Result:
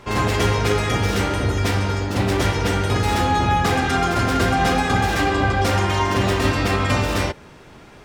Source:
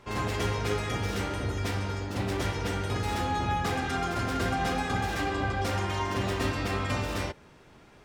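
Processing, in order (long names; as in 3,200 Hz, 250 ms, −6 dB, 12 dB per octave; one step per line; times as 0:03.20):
boost into a limiter +17 dB
level −6.5 dB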